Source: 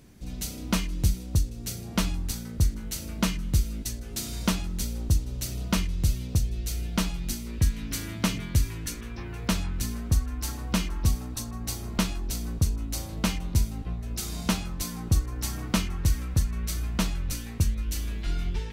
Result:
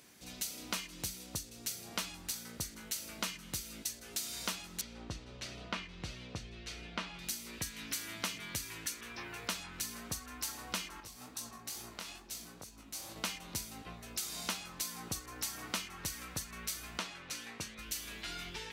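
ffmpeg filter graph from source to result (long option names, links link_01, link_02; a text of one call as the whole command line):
ffmpeg -i in.wav -filter_complex "[0:a]asettb=1/sr,asplit=3[link_01][link_02][link_03];[link_01]atrim=end=4.814[link_04];[link_02]atrim=start=4.81:end=7.19,asetpts=PTS-STARTPTS,afade=type=in:duration=0.004:curve=qsin,afade=type=out:start_time=2.376:duration=0.004:curve=qsin,lowpass=2900,asplit=2[link_05][link_06];[link_06]adelay=18,volume=-14dB[link_07];[link_05][link_07]amix=inputs=2:normalize=0,atrim=end_sample=104958[link_08];[link_03]atrim=start=7.186[link_09];[link_04][link_08]acrossfade=duration=0.004:curve1=hsin:curve2=qsin[link_10];[link_10][link_09]acrossfade=duration=0.004:curve1=qsin:curve2=hsin,asettb=1/sr,asplit=3[link_11][link_12][link_13];[link_11]atrim=end=11.004[link_14];[link_12]atrim=start=11:end=13.16,asetpts=PTS-STARTPTS,afade=type=in:duration=0.004:curve=qsin,afade=type=out:start_time=2.156:duration=0.004:curve=qsin,acompressor=threshold=-32dB:ratio=10:attack=3.2:release=140:knee=1:detection=peak,flanger=delay=17:depth=7.6:speed=2.3[link_15];[link_13]atrim=start=13.156[link_16];[link_14][link_15]acrossfade=duration=0.004:curve1=hsin:curve2=qsin[link_17];[link_17][link_16]acrossfade=duration=0.004:curve1=qsin:curve2=hsin,asettb=1/sr,asplit=3[link_18][link_19][link_20];[link_18]atrim=end=16.994[link_21];[link_19]atrim=start=16.99:end=17.79,asetpts=PTS-STARTPTS,afade=type=in:duration=0.004:curve=qsin,afade=type=out:start_time=0.796:duration=0.004:curve=qsin,highpass=frequency=210:poles=1,aemphasis=mode=reproduction:type=50fm[link_22];[link_20]atrim=start=17.786[link_23];[link_21][link_22]acrossfade=duration=0.004:curve1=hsin:curve2=qsin[link_24];[link_24][link_23]acrossfade=duration=0.004:curve1=qsin:curve2=hsin,highpass=frequency=1200:poles=1,acompressor=threshold=-41dB:ratio=2.5,volume=3dB" out.wav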